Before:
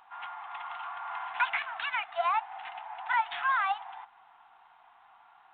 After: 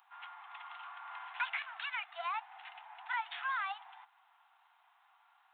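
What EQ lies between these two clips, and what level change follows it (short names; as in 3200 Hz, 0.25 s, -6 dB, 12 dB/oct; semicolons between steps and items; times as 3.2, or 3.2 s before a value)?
HPF 580 Hz 12 dB/oct; differentiator; high shelf 2400 Hz -10.5 dB; +9.0 dB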